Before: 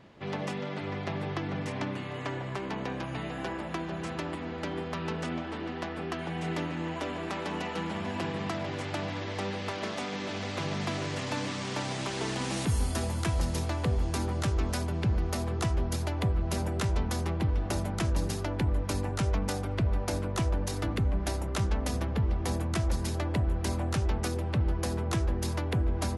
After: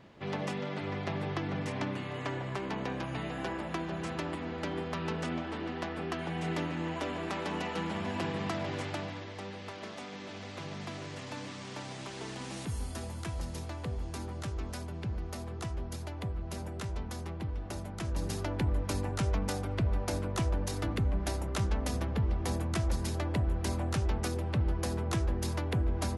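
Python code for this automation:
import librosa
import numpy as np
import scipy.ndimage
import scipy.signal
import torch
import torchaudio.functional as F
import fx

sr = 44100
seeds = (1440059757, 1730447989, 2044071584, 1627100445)

y = fx.gain(x, sr, db=fx.line((8.81, -1.0), (9.33, -8.5), (17.95, -8.5), (18.37, -2.0)))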